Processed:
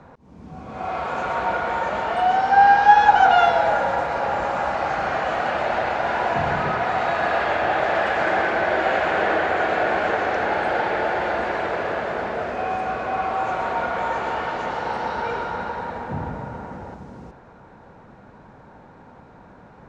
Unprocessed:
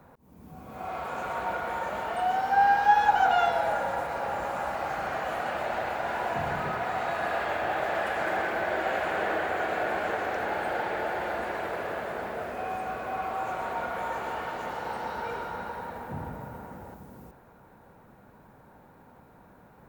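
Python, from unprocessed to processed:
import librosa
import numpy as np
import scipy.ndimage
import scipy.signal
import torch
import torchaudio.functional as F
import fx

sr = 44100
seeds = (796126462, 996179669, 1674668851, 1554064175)

y = scipy.signal.sosfilt(scipy.signal.butter(4, 6400.0, 'lowpass', fs=sr, output='sos'), x)
y = y * librosa.db_to_amplitude(8.0)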